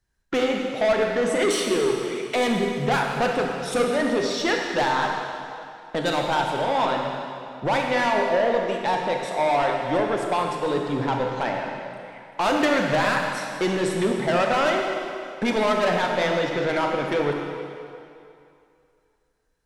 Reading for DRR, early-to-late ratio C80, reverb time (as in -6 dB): 1.0 dB, 3.0 dB, 2.5 s